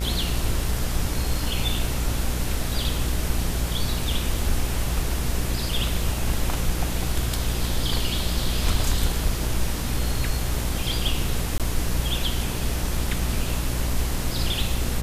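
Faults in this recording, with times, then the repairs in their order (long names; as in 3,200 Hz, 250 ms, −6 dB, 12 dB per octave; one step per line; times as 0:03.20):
mains buzz 60 Hz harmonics 34 −28 dBFS
0:11.58–0:11.60: drop-out 17 ms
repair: hum removal 60 Hz, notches 34
repair the gap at 0:11.58, 17 ms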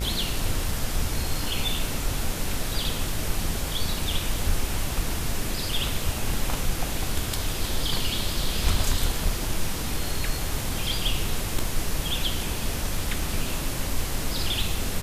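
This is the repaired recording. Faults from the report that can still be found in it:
none of them is left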